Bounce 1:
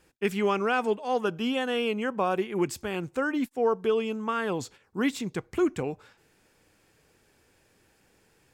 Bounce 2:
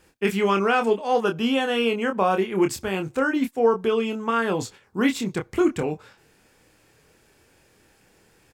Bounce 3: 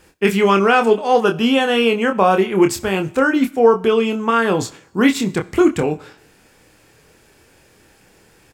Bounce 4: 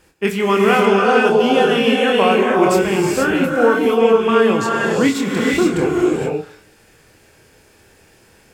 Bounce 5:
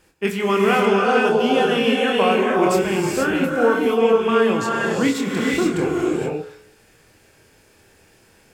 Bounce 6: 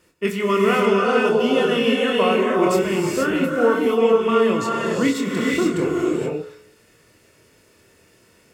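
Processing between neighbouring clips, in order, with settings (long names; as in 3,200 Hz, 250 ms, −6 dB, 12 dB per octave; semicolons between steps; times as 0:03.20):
double-tracking delay 26 ms −6 dB; level +4.5 dB
four-comb reverb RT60 0.72 s, combs from 29 ms, DRR 19 dB; level +7 dB
reverb whose tail is shaped and stops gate 500 ms rising, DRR −2.5 dB; level −3 dB
hum removal 71.18 Hz, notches 28; level −3 dB
notch comb filter 800 Hz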